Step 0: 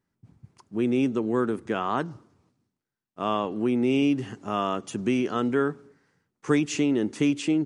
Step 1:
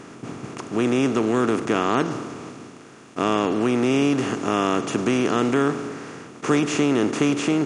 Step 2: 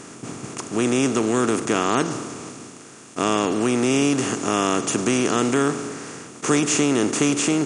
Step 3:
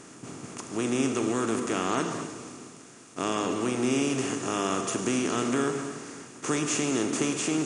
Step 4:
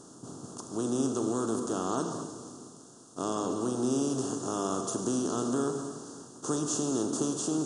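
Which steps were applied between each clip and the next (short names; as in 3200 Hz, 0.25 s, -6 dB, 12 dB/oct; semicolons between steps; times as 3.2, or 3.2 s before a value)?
per-bin compression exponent 0.4
bell 8400 Hz +13.5 dB 1.3 oct
non-linear reverb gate 0.3 s flat, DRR 5.5 dB; gain -8 dB
Butterworth band-stop 2200 Hz, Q 0.86; gain -2.5 dB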